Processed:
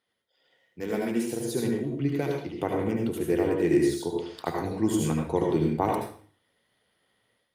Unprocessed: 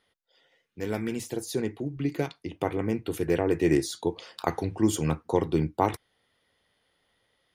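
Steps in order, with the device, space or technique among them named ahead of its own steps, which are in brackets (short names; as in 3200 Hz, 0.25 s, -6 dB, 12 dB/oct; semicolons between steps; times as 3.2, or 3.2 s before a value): 0.81–1.3 HPF 140 Hz -> 320 Hz 12 dB/oct; low shelf 270 Hz +2 dB; far-field microphone of a smart speaker (reverb RT60 0.45 s, pre-delay 69 ms, DRR 0 dB; HPF 110 Hz 12 dB/oct; AGC gain up to 8 dB; gain -9 dB; Opus 48 kbps 48000 Hz)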